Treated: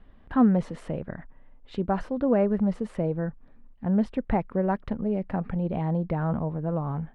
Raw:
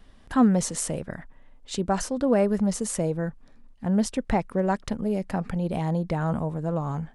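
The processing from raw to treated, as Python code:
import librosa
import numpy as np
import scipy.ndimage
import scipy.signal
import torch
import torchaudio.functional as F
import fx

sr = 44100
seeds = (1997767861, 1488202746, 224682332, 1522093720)

y = fx.air_absorb(x, sr, metres=460.0)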